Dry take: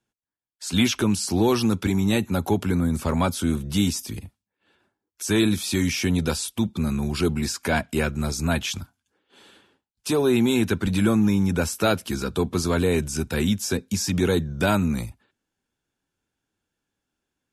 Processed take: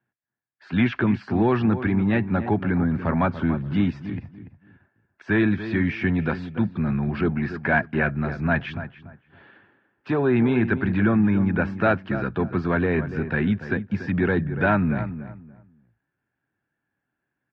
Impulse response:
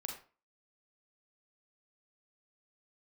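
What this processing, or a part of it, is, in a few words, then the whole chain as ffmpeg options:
bass cabinet: -filter_complex "[0:a]highpass=69,equalizer=f=75:t=q:w=4:g=-5,equalizer=f=130:t=q:w=4:g=7,equalizer=f=470:t=q:w=4:g=-4,equalizer=f=690:t=q:w=4:g=3,equalizer=f=1.7k:t=q:w=4:g=9,lowpass=f=2.3k:w=0.5412,lowpass=f=2.3k:w=1.3066,equalizer=f=4.6k:w=3.5:g=4.5,asplit=2[a][b];[b]adelay=288,lowpass=f=1.6k:p=1,volume=-11dB,asplit=2[c][d];[d]adelay=288,lowpass=f=1.6k:p=1,volume=0.25,asplit=2[e][f];[f]adelay=288,lowpass=f=1.6k:p=1,volume=0.25[g];[a][c][e][g]amix=inputs=4:normalize=0"

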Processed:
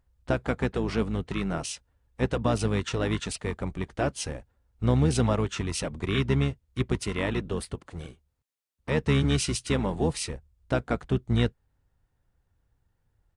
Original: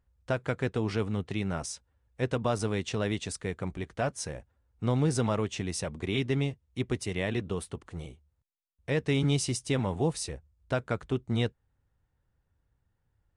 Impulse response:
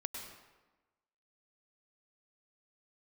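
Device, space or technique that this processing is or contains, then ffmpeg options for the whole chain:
octave pedal: -filter_complex "[0:a]asettb=1/sr,asplit=3[a][b][c];[a]atrim=end=7.754[d];[b]atrim=start=7.75:end=8.99,asetpts=PTS-STARTPTS,afade=t=in:d=0.004:c=qsin,afade=t=out:st=1.236:d=0.004:c=qsin,highpass=f=140:p=1[e];[c]atrim=start=8.986[f];[d][e]acrossfade=d=0.004:c1=hsin:c2=qsin[g];[g][f]acrossfade=d=0.004:c1=qsin:c2=hsin,asplit=2[h][i];[i]asetrate=22050,aresample=44100,atempo=2,volume=-5dB[j];[h][j]amix=inputs=2:normalize=0,volume=2dB"

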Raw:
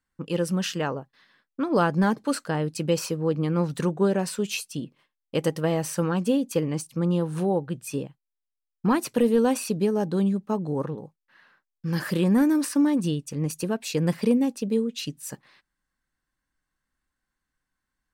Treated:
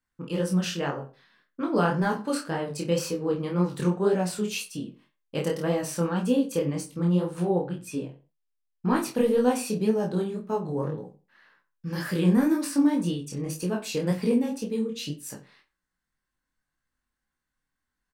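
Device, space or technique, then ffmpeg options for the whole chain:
double-tracked vocal: -filter_complex "[0:a]asettb=1/sr,asplit=3[a][b][c];[a]atrim=end=7.404[d];[b]atrim=start=7.4:end=8.96,asetpts=PTS-STARTPTS,afade=t=in:d=0.004:c=qsin,afade=t=out:st=1.556:d=0.004:c=qsin,highshelf=f=8.7k:g=-7[e];[c]atrim=start=8.956[f];[d][e]acrossfade=d=0.004:c1=hsin:c2=qsin[g];[g][f]acrossfade=d=0.004:c1=qsin:c2=hsin,asplit=2[h][i];[i]adelay=28,volume=-4.5dB[j];[h][j]amix=inputs=2:normalize=0,asplit=2[k][l];[l]adelay=66,lowpass=f=2.7k:p=1,volume=-12.5dB,asplit=2[m][n];[n]adelay=66,lowpass=f=2.7k:p=1,volume=0.29,asplit=2[o][p];[p]adelay=66,lowpass=f=2.7k:p=1,volume=0.29[q];[k][m][o][q]amix=inputs=4:normalize=0,flanger=delay=16:depth=7.8:speed=1.9"

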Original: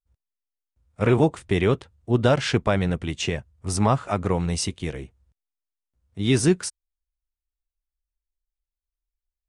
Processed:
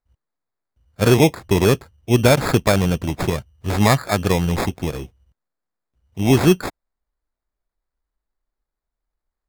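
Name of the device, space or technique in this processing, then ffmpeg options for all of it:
crushed at another speed: -af "asetrate=22050,aresample=44100,acrusher=samples=30:mix=1:aa=0.000001,asetrate=88200,aresample=44100,volume=5dB"

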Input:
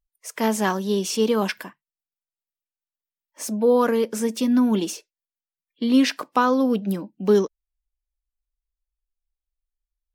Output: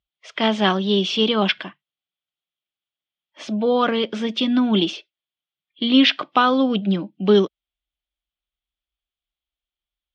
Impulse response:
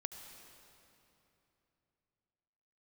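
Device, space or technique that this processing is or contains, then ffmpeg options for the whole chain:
guitar cabinet: -af "highpass=97,equalizer=f=240:t=q:w=4:g=-8,equalizer=f=470:t=q:w=4:g=-10,equalizer=f=960:t=q:w=4:g=-8,equalizer=f=1.7k:t=q:w=4:g=-5,equalizer=f=3.3k:t=q:w=4:g=10,lowpass=f=3.8k:w=0.5412,lowpass=f=3.8k:w=1.3066,volume=7.5dB"

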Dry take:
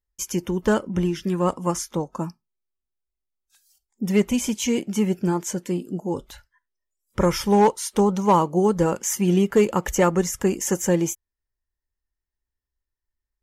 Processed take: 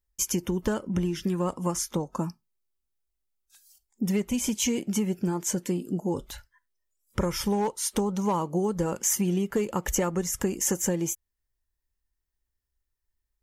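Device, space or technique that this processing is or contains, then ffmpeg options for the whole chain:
ASMR close-microphone chain: -af "lowshelf=f=210:g=3.5,acompressor=threshold=-24dB:ratio=5,highshelf=f=6.3k:g=5.5"

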